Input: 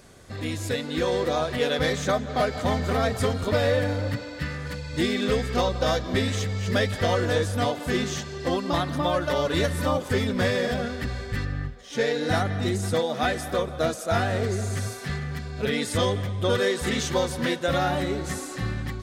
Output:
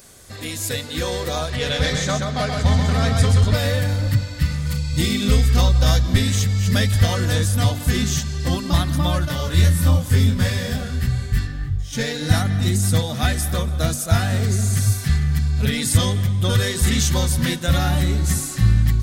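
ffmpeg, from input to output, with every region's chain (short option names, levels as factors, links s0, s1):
-filter_complex "[0:a]asettb=1/sr,asplit=3[s0][s1][s2];[s0]atrim=end=1.504[s3];[s1]atrim=start=1.5:end=3.54,asetpts=PTS-STARTPTS,afade=t=in:d=0.004:c=qsin,afade=t=out:st=2.036:d=0.004:c=qsin,lowpass=6900,aecho=1:1:129:0.631,atrim=end_sample=89964[s4];[s2]atrim=start=3.536[s5];[s3][s4]acrossfade=d=0.004:c1=hsin:c2=qsin[s6];[s6][s5]acrossfade=d=0.004:c1=qsin:c2=hsin,asettb=1/sr,asplit=3[s7][s8][s9];[s7]atrim=end=4.414[s10];[s8]atrim=start=4.41:end=5.48,asetpts=PTS-STARTPTS,afade=t=in:d=0.004:c=qsin,afade=t=out:st=1.066:d=0.004:c=qsin,bandreject=f=1700:w=5.5,asplit=2[s11][s12];[s12]adelay=35,volume=0.355[s13];[s11][s13]amix=inputs=2:normalize=0,atrim=end_sample=47187[s14];[s9]atrim=start=5.476[s15];[s10][s14]acrossfade=d=0.004:c1=hsin:c2=qsin[s16];[s16][s15]acrossfade=d=0.004:c1=qsin:c2=hsin,asettb=1/sr,asplit=3[s17][s18][s19];[s17]atrim=end=9.254[s20];[s18]atrim=start=9.25:end=11.93,asetpts=PTS-STARTPTS,afade=t=in:d=0.004:c=qsin,afade=t=out:st=2.676:d=0.004:c=qsin,asplit=2[s21][s22];[s22]adelay=23,volume=0.75[s23];[s21][s23]amix=inputs=2:normalize=0,atrim=end_sample=118188,flanger=delay=5.7:depth=4.7:regen=-62:speed=1.9:shape=triangular[s24];[s19]atrim=start=11.926[s25];[s20][s24]acrossfade=d=0.004:c1=hsin:c2=qsin[s26];[s26][s25]acrossfade=d=0.004:c1=qsin:c2=hsin,aemphasis=mode=production:type=75kf,bandreject=f=48.37:t=h:w=4,bandreject=f=96.74:t=h:w=4,bandreject=f=145.11:t=h:w=4,bandreject=f=193.48:t=h:w=4,bandreject=f=241.85:t=h:w=4,bandreject=f=290.22:t=h:w=4,bandreject=f=338.59:t=h:w=4,bandreject=f=386.96:t=h:w=4,asubboost=boost=9.5:cutoff=140"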